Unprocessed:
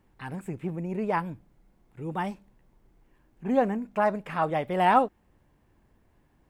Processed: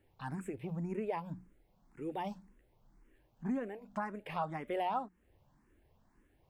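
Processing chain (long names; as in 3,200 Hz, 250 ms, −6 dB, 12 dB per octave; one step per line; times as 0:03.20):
mains-hum notches 60/120/180 Hz
downward compressor 5 to 1, threshold −30 dBFS, peak gain reduction 13.5 dB
frequency shifter mixed with the dry sound +1.9 Hz
level −1.5 dB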